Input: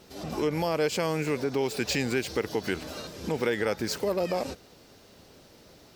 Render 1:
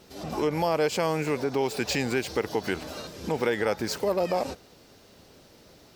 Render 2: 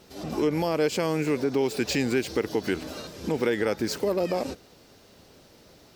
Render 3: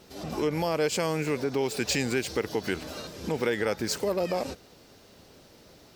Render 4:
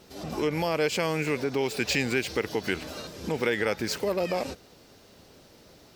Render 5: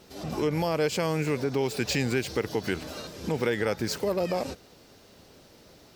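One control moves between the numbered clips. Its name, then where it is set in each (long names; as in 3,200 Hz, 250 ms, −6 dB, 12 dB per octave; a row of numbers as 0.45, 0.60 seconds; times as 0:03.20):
dynamic equaliser, frequency: 830, 300, 7,900, 2,400, 120 Hertz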